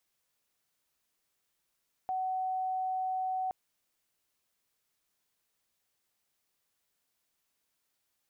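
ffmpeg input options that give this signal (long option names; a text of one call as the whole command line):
ffmpeg -f lavfi -i "sine=frequency=750:duration=1.42:sample_rate=44100,volume=-11.94dB" out.wav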